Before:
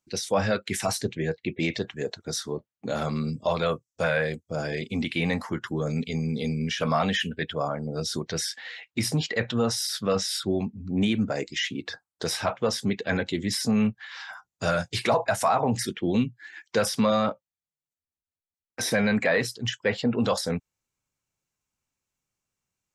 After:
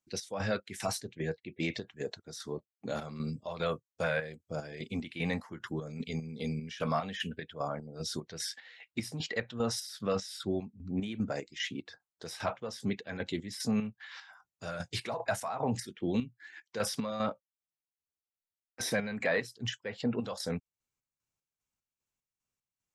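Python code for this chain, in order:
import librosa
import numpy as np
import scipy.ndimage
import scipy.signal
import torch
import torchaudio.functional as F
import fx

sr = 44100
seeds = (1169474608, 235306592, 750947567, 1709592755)

y = fx.chopper(x, sr, hz=2.5, depth_pct=60, duty_pct=50)
y = y * librosa.db_to_amplitude(-6.5)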